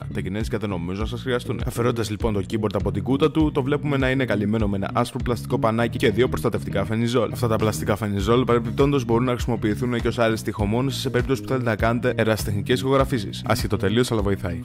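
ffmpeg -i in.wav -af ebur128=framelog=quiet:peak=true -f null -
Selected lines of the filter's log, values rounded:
Integrated loudness:
  I:         -22.6 LUFS
  Threshold: -32.6 LUFS
Loudness range:
  LRA:         1.4 LU
  Threshold: -42.4 LUFS
  LRA low:   -23.0 LUFS
  LRA high:  -21.7 LUFS
True peak:
  Peak:       -6.4 dBFS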